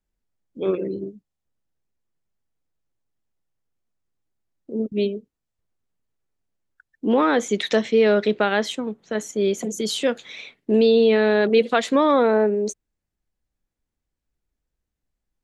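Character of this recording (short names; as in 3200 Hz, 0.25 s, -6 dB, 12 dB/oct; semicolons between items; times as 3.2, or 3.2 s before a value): noise floor -83 dBFS; spectral tilt -3.5 dB/oct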